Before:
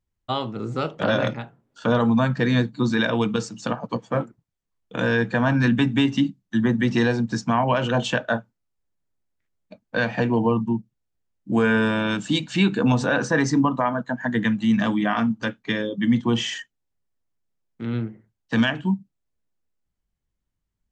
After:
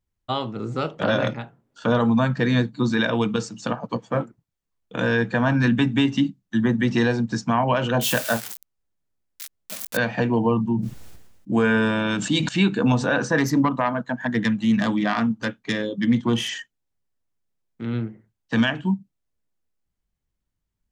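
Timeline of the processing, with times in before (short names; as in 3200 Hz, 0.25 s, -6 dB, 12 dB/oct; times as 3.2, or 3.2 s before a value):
8.01–9.97 switching spikes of -17 dBFS
10.5–12.49 sustainer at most 48 dB/s
13.38–16.49 self-modulated delay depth 0.086 ms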